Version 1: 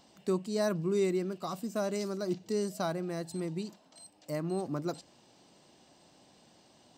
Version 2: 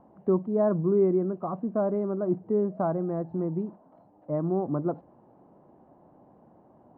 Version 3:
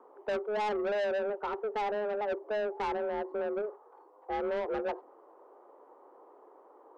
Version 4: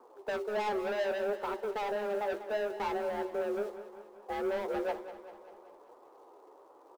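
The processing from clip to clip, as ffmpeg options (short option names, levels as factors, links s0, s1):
-af "lowpass=f=1100:w=0.5412,lowpass=f=1100:w=1.3066,volume=2.11"
-af "afreqshift=210,asoftclip=type=tanh:threshold=0.0376"
-filter_complex "[0:a]asplit=2[s0][s1];[s1]acrusher=bits=2:mode=log:mix=0:aa=0.000001,volume=0.447[s2];[s0][s2]amix=inputs=2:normalize=0,flanger=delay=7.8:depth=8.2:regen=41:speed=0.67:shape=triangular,aecho=1:1:195|390|585|780|975|1170:0.224|0.128|0.0727|0.0415|0.0236|0.0135"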